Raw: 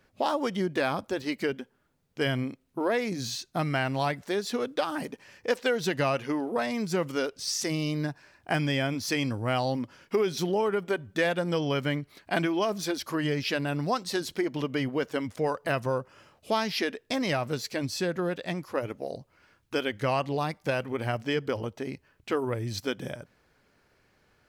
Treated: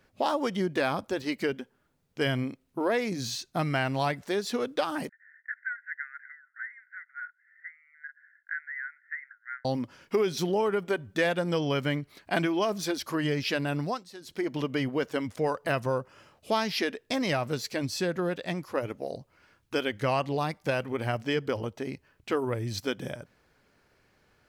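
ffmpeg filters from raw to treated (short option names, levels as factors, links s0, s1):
-filter_complex "[0:a]asettb=1/sr,asplit=3[s0][s1][s2];[s0]atrim=end=5.094[s3];[s1]atrim=start=5.09:end=9.65,asetpts=PTS-STARTPTS,afade=t=in:d=0.004:c=qsin,afade=t=out:st=4.556:d=0.004:c=qsin,asuperpass=centerf=1700:order=12:qfactor=2.6[s4];[s2]atrim=start=9.646[s5];[s3][s4]acrossfade=d=0.004:c1=hsin:c2=qsin[s6];[s6][s5]acrossfade=d=0.004:c1=qsin:c2=hsin,asplit=3[s7][s8][s9];[s7]atrim=end=14.08,asetpts=PTS-STARTPTS,afade=t=out:st=13.79:d=0.29:silence=0.158489[s10];[s8]atrim=start=14.08:end=14.21,asetpts=PTS-STARTPTS,volume=0.158[s11];[s9]atrim=start=14.21,asetpts=PTS-STARTPTS,afade=t=in:d=0.29:silence=0.158489[s12];[s10][s11][s12]concat=n=3:v=0:a=1"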